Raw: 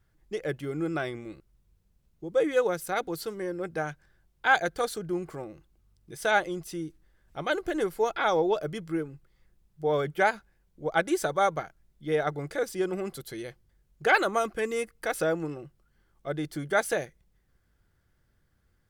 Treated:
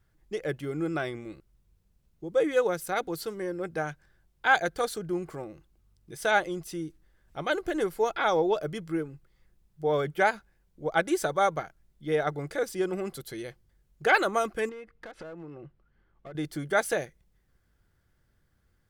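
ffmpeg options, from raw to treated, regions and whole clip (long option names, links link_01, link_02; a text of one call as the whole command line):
ffmpeg -i in.wav -filter_complex "[0:a]asettb=1/sr,asplit=3[link_01][link_02][link_03];[link_01]atrim=end=14.694[link_04];[link_02]atrim=start=14.69:end=16.35,asetpts=PTS-STARTPTS,afade=type=in:duration=0.004:curve=qsin,afade=type=out:start_time=1.656:duration=0.004:curve=qsin,lowpass=2700,acompressor=threshold=-38dB:ratio=10:attack=3.2:release=140:knee=1:detection=peak,aeval=exprs='clip(val(0),-1,0.01)':channel_layout=same[link_05];[link_03]atrim=start=16.346[link_06];[link_04][link_05]acrossfade=duration=0.004:curve1=hsin:curve2=qsin[link_07];[link_07][link_06]acrossfade=duration=0.004:curve1=qsin:curve2=hsin" out.wav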